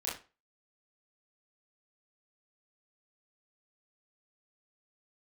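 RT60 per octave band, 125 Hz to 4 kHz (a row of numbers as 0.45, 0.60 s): 0.30, 0.30, 0.30, 0.30, 0.30, 0.25 s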